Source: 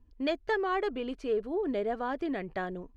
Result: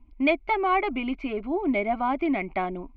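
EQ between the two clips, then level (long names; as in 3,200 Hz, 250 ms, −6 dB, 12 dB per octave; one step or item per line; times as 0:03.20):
low-pass with resonance 2,200 Hz, resonance Q 15
phaser with its sweep stopped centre 470 Hz, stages 6
+8.5 dB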